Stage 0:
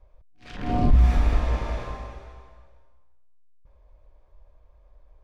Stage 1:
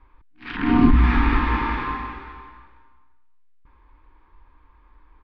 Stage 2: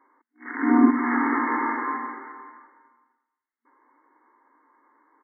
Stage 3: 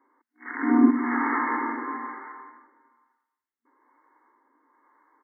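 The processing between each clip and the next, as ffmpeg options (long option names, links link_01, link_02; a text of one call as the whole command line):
ffmpeg -i in.wav -af "firequalizer=gain_entry='entry(140,0);entry(280,15);entry(620,-14);entry(880,13);entry(1800,14);entry(4600,1);entry(6800,-19)':delay=0.05:min_phase=1" out.wav
ffmpeg -i in.wav -af "afftfilt=real='re*between(b*sr/4096,230,2200)':imag='im*between(b*sr/4096,230,2200)':win_size=4096:overlap=0.75" out.wav
ffmpeg -i in.wav -filter_complex "[0:a]acrossover=split=470[link_01][link_02];[link_01]aeval=exprs='val(0)*(1-0.5/2+0.5/2*cos(2*PI*1.1*n/s))':channel_layout=same[link_03];[link_02]aeval=exprs='val(0)*(1-0.5/2-0.5/2*cos(2*PI*1.1*n/s))':channel_layout=same[link_04];[link_03][link_04]amix=inputs=2:normalize=0" out.wav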